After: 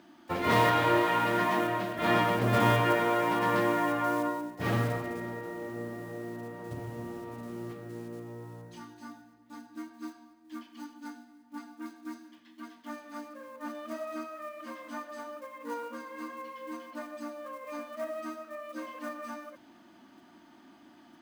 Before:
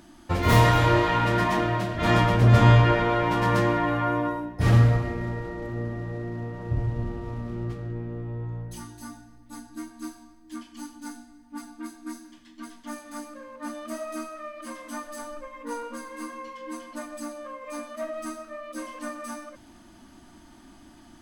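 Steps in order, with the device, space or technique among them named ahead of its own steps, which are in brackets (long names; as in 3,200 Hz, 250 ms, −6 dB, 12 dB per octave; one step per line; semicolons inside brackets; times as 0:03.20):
early digital voice recorder (band-pass filter 220–3,900 Hz; one scale factor per block 5 bits)
level −3 dB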